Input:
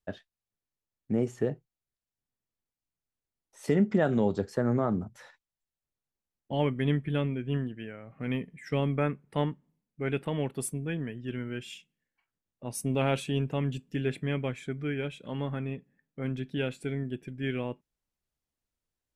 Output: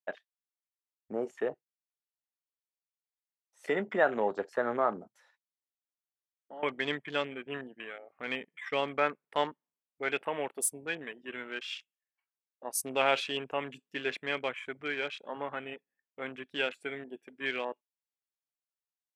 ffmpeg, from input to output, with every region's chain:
-filter_complex "[0:a]asettb=1/sr,asplit=3[a][b][c];[a]atrim=end=5.154[d];[b]atrim=start=5.15:end=6.63,asetpts=PTS-STARTPTS,afade=t=in:d=0.004:c=qsin,afade=t=out:st=1.476:d=0.004:c=qsin,highpass=f=220:t=q:w=2.2,acompressor=threshold=-52dB:ratio=2:attack=3.2:release=140:knee=1:detection=peak[e];[c]atrim=start=6.626[f];[d][e]acrossfade=d=0.004:c1=hsin:c2=qsin[g];[g][f]acrossfade=d=0.004:c1=qsin:c2=hsin,highpass=690,afwtdn=0.00355,volume=6dB"

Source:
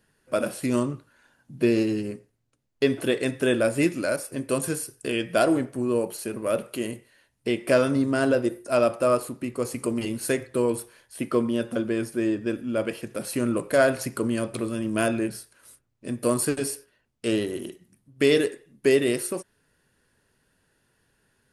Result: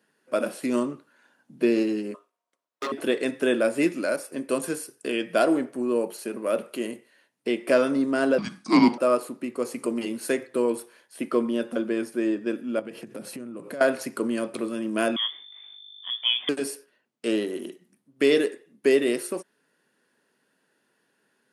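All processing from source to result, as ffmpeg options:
-filter_complex "[0:a]asettb=1/sr,asplit=3[a][b][c];[a]atrim=end=2.144[d];[b]atrim=start=2.14:end=2.92,asetpts=PTS-STARTPTS,afade=t=in:d=0.004:c=qsin,afade=t=out:st=0.776:d=0.004:c=qsin,highpass=f=300:p=1,aeval=exprs='0.0944*(abs(mod(val(0)/0.0944+3,4)-2)-1)':c=same,aeval=exprs='val(0)*sin(2*PI*820*n/s)':c=same[e];[c]atrim=start=2.916[f];[d][e]acrossfade=d=0.004:c1=hsin:c2=qsin[g];[g][f]acrossfade=d=0.004:c1=qsin:c2=hsin,asettb=1/sr,asplit=3[h][i][j];[h]atrim=end=8.384[k];[i]atrim=start=8.38:end=8.98,asetpts=PTS-STARTPTS,afade=t=in:d=0.004:c=qsin,afade=t=out:st=0.596:d=0.004:c=qsin,lowpass=f=5.5k:t=q:w=2.6,acontrast=26,afreqshift=-330[l];[j]atrim=start=8.976[m];[k][l]acrossfade=d=0.004:c1=hsin:c2=qsin[n];[n][m]acrossfade=d=0.004:c1=qsin:c2=hsin,asettb=1/sr,asplit=3[o][p][q];[o]atrim=end=12.794[r];[p]atrim=start=12.79:end=13.81,asetpts=PTS-STARTPTS,afade=t=in:d=0.004:c=qsin,afade=t=out:st=1.016:d=0.004:c=qsin,equalizer=f=98:t=o:w=2.3:g=13.5,acompressor=threshold=-31dB:ratio=12:attack=3.2:release=140:knee=1:detection=peak[s];[q]atrim=start=13.806[t];[r][s]acrossfade=d=0.004:c1=hsin:c2=qsin[u];[u][t]acrossfade=d=0.004:c1=qsin:c2=hsin,asettb=1/sr,asplit=3[v][w][x];[v]atrim=end=15.164[y];[w]atrim=start=15.16:end=16.49,asetpts=PTS-STARTPTS,afade=t=in:d=0.004:c=qsin,afade=t=out:st=1.326:d=0.004:c=qsin,aeval=exprs='val(0)+0.00631*(sin(2*PI*50*n/s)+sin(2*PI*2*50*n/s)/2+sin(2*PI*3*50*n/s)/3+sin(2*PI*4*50*n/s)/4+sin(2*PI*5*50*n/s)/5)':c=same,lowpass=f=3.1k:t=q:w=0.5098,lowpass=f=3.1k:t=q:w=0.6013,lowpass=f=3.1k:t=q:w=0.9,lowpass=f=3.1k:t=q:w=2.563,afreqshift=-3600[z];[x]atrim=start=16.486[aa];[y][z]acrossfade=d=0.004:c1=hsin:c2=qsin[ab];[ab][aa]acrossfade=d=0.004:c1=qsin:c2=hsin,highpass=f=200:w=0.5412,highpass=f=200:w=1.3066,highshelf=f=5.3k:g=-5.5"

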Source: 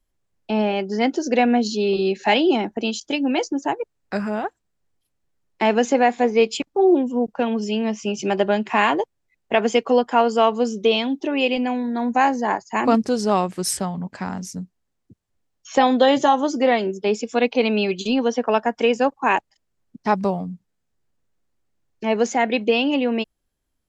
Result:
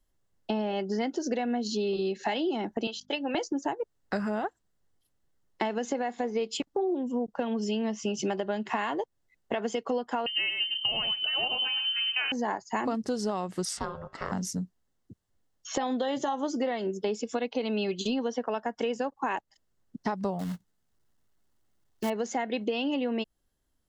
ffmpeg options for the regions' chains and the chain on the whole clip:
-filter_complex "[0:a]asettb=1/sr,asplit=3[a][b][c];[a]atrim=end=2.874[d];[b]atrim=start=2.87:end=3.35,asetpts=PTS-STARTPTS,afade=t=in:d=0.004:c=qsin,afade=t=out:st=0.476:d=0.004:c=qsin,agate=range=-15dB:threshold=-48dB:ratio=16:release=100:detection=peak,aeval=exprs='val(0)+0.0112*(sin(2*PI*50*n/s)+sin(2*PI*2*50*n/s)/2+sin(2*PI*3*50*n/s)/3+sin(2*PI*4*50*n/s)/4+sin(2*PI*5*50*n/s)/5)':c=same,highpass=520,lowpass=3.6k[e];[c]atrim=start=3.346[f];[d][e]acrossfade=d=0.004:c1=hsin:c2=qsin[g];[g][f]acrossfade=d=0.004:c1=qsin:c2=hsin,asettb=1/sr,asplit=3[h][i][j];[h]atrim=end=10.264[k];[i]atrim=start=10.26:end=12.32,asetpts=PTS-STARTPTS,afade=t=in:d=0.004:c=qsin,afade=t=out:st=2.056:d=0.004:c=qsin,lowpass=f=2.8k:t=q:w=0.5098,lowpass=f=2.8k:t=q:w=0.6013,lowpass=f=2.8k:t=q:w=0.9,lowpass=f=2.8k:t=q:w=2.563,afreqshift=-3300,aecho=1:1:106:0.398,atrim=end_sample=90846[l];[j]atrim=start=12.316[m];[k][l]acrossfade=d=0.004:c1=hsin:c2=qsin[n];[n][m]acrossfade=d=0.004:c1=qsin:c2=hsin,asettb=1/sr,asplit=3[o][p][q];[o]atrim=end=13.654[r];[p]atrim=start=13.65:end=14.32,asetpts=PTS-STARTPTS,afade=t=in:d=0.004:c=qsin,afade=t=out:st=0.666:d=0.004:c=qsin,acrossover=split=300 7400:gain=0.158 1 0.112[s][t][u];[s][t][u]amix=inputs=3:normalize=0,bandreject=f=104.5:t=h:w=4,bandreject=f=209:t=h:w=4,bandreject=f=313.5:t=h:w=4,bandreject=f=418:t=h:w=4,bandreject=f=522.5:t=h:w=4,bandreject=f=627:t=h:w=4,bandreject=f=731.5:t=h:w=4,bandreject=f=836:t=h:w=4,bandreject=f=940.5:t=h:w=4,bandreject=f=1.045k:t=h:w=4,bandreject=f=1.1495k:t=h:w=4,bandreject=f=1.254k:t=h:w=4,bandreject=f=1.3585k:t=h:w=4,bandreject=f=1.463k:t=h:w=4,bandreject=f=1.5675k:t=h:w=4,bandreject=f=1.672k:t=h:w=4,bandreject=f=1.7765k:t=h:w=4,bandreject=f=1.881k:t=h:w=4,bandreject=f=1.9855k:t=h:w=4,bandreject=f=2.09k:t=h:w=4,bandreject=f=2.1945k:t=h:w=4,bandreject=f=2.299k:t=h:w=4,bandreject=f=2.4035k:t=h:w=4,bandreject=f=2.508k:t=h:w=4,bandreject=f=2.6125k:t=h:w=4,bandreject=f=2.717k:t=h:w=4,bandreject=f=2.8215k:t=h:w=4,bandreject=f=2.926k:t=h:w=4,bandreject=f=3.0305k:t=h:w=4,bandreject=f=3.135k:t=h:w=4,aeval=exprs='val(0)*sin(2*PI*340*n/s)':c=same[v];[q]atrim=start=14.316[w];[r][v]acrossfade=d=0.004:c1=hsin:c2=qsin[x];[x][w]acrossfade=d=0.004:c1=qsin:c2=hsin,asettb=1/sr,asplit=3[y][z][aa];[y]atrim=end=20.394[ab];[z]atrim=start=20.39:end=22.1,asetpts=PTS-STARTPTS,afade=t=in:d=0.004:c=qsin,afade=t=out:st=1.706:d=0.004:c=qsin,acrusher=bits=3:mode=log:mix=0:aa=0.000001,bandreject=f=510:w=11[ac];[aa]atrim=start=22.096[ad];[ab][ac]acrossfade=d=0.004:c1=hsin:c2=qsin[ae];[ae][ad]acrossfade=d=0.004:c1=qsin:c2=hsin,bandreject=f=2.4k:w=6.8,alimiter=limit=-10.5dB:level=0:latency=1:release=175,acompressor=threshold=-27dB:ratio=6"

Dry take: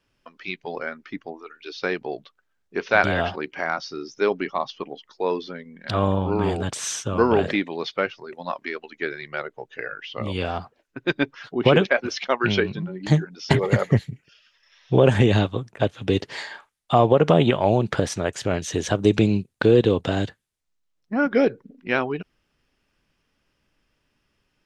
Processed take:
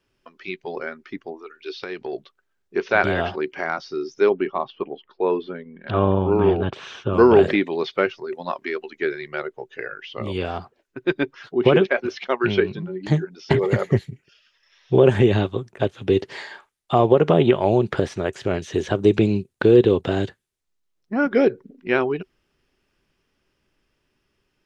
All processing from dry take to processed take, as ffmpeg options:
-filter_complex "[0:a]asettb=1/sr,asplit=3[a][b][c];[a]atrim=end=1.684[d];[b]atrim=start=1.68:end=2.13,asetpts=PTS-STARTPTS,afade=t=in:d=0.004:c=qsin,afade=t=out:st=0.446:d=0.004:c=qsin,lowpass=4.6k,highshelf=f=2.7k:g=10.5,acompressor=threshold=-27dB:ratio=10:attack=3.2:release=140:knee=1:detection=peak[e];[c]atrim=start=2.126[f];[d][e]acrossfade=d=0.004:c1=hsin:c2=qsin[g];[g][f]acrossfade=d=0.004:c1=qsin:c2=hsin,asettb=1/sr,asplit=3[h][i][j];[h]atrim=end=4.294[k];[i]atrim=start=4.29:end=7.14,asetpts=PTS-STARTPTS,afade=t=in:d=0.004:c=qsin,afade=t=out:st=2.846:d=0.004:c=qsin,lowpass=f=3.1k:w=0.5412,lowpass=f=3.1k:w=1.3066,equalizer=f=2k:w=4.2:g=-6.5[l];[j]atrim=start=7.136[m];[k][l]acrossfade=d=0.004:c1=hsin:c2=qsin[n];[n][m]acrossfade=d=0.004:c1=qsin:c2=hsin,acrossover=split=3800[o][p];[p]acompressor=threshold=-44dB:ratio=4:attack=1:release=60[q];[o][q]amix=inputs=2:normalize=0,equalizer=f=380:w=6.2:g=9,dynaudnorm=f=770:g=9:m=11.5dB,volume=-1dB"

